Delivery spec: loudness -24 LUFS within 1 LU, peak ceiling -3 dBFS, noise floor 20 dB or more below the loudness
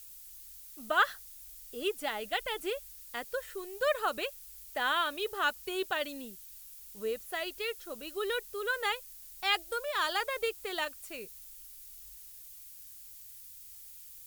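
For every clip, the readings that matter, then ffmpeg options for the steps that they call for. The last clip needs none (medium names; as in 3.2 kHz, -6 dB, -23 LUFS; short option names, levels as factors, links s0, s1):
noise floor -50 dBFS; noise floor target -54 dBFS; loudness -33.5 LUFS; peak level -13.5 dBFS; loudness target -24.0 LUFS
-> -af "afftdn=nr=6:nf=-50"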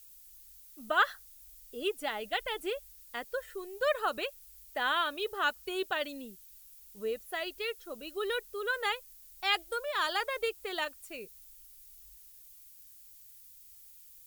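noise floor -55 dBFS; loudness -34.0 LUFS; peak level -13.5 dBFS; loudness target -24.0 LUFS
-> -af "volume=3.16"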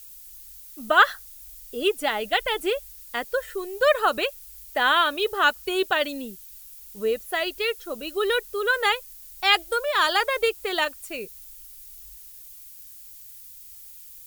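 loudness -24.0 LUFS; peak level -3.5 dBFS; noise floor -45 dBFS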